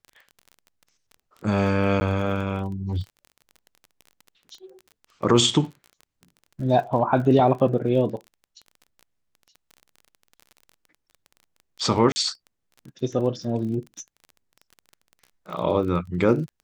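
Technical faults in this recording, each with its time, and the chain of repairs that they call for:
crackle 25 per s -34 dBFS
2.00–2.01 s: dropout 10 ms
12.12–12.16 s: dropout 40 ms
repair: de-click; interpolate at 2.00 s, 10 ms; interpolate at 12.12 s, 40 ms

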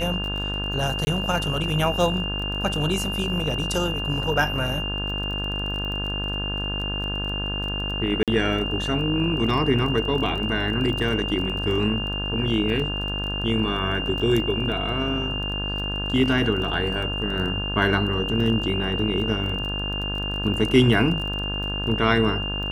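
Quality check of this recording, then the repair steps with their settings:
buzz 50 Hz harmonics 34 -30 dBFS
crackle 21 per s -30 dBFS
whine 2.8 kHz -28 dBFS
1.05–1.07 s: dropout 20 ms
8.23–8.28 s: dropout 47 ms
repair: de-click; de-hum 50 Hz, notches 34; band-stop 2.8 kHz, Q 30; interpolate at 1.05 s, 20 ms; interpolate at 8.23 s, 47 ms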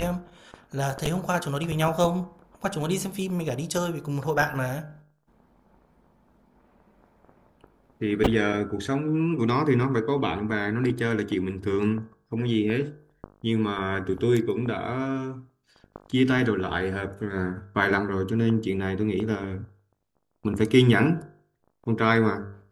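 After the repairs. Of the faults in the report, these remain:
nothing left

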